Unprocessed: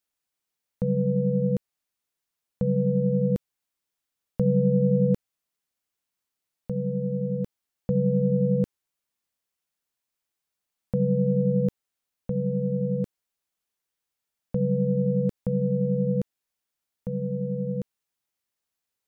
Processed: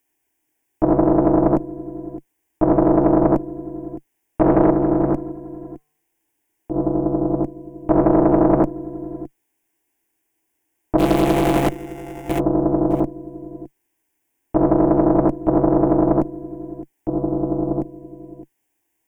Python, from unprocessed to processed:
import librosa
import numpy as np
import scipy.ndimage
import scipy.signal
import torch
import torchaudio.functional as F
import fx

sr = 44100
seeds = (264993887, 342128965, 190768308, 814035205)

p1 = fx.sample_sort(x, sr, block=64, at=(10.98, 12.38), fade=0.02)
p2 = 10.0 ** (-23.0 / 20.0) * np.tanh(p1 / 10.0 ** (-23.0 / 20.0))
p3 = p1 + F.gain(torch.from_numpy(p2), -11.0).numpy()
p4 = fx.cheby_harmonics(p3, sr, harmonics=(4,), levels_db=(-6,), full_scale_db=-10.5)
p5 = fx.comb_fb(p4, sr, f0_hz=150.0, decay_s=0.83, harmonics='odd', damping=0.0, mix_pct=40, at=(4.7, 6.74))
p6 = fx.quant_dither(p5, sr, seeds[0], bits=12, dither='triangular')
p7 = fx.peak_eq(p6, sr, hz=140.0, db=12.0, octaves=0.57)
p8 = fx.fixed_phaser(p7, sr, hz=840.0, stages=8)
p9 = fx.small_body(p8, sr, hz=(320.0, 540.0), ring_ms=35, db=12)
p10 = p9 + fx.echo_single(p9, sr, ms=613, db=-16.5, dry=0)
y = fx.doppler_dist(p10, sr, depth_ms=0.71)